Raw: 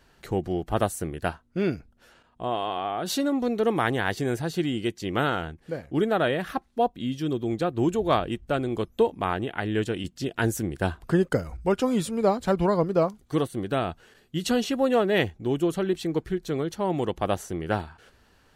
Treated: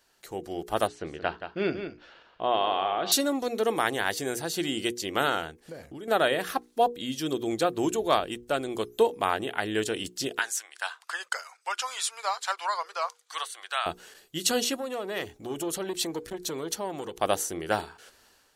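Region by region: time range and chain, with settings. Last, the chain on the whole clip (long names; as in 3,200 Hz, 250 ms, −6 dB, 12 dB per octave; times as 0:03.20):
0:00.87–0:03.12: low-pass filter 3,900 Hz 24 dB per octave + single-tap delay 176 ms −10 dB
0:05.65–0:06.08: low-shelf EQ 180 Hz +9.5 dB + downward compressor 16 to 1, threshold −32 dBFS
0:10.39–0:13.86: high-pass filter 970 Hz 24 dB per octave + high-frequency loss of the air 58 metres
0:14.76–0:17.21: downward compressor 2.5 to 1, threshold −31 dBFS + saturating transformer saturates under 430 Hz
whole clip: bass and treble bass −12 dB, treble +10 dB; mains-hum notches 60/120/180/240/300/360/420/480 Hz; automatic gain control gain up to 11.5 dB; level −7.5 dB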